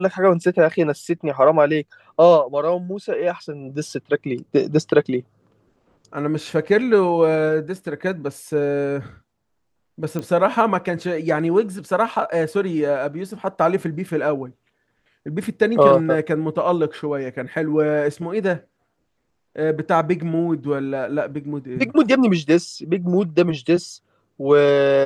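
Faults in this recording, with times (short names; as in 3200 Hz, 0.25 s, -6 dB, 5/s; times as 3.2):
10.19 pop -15 dBFS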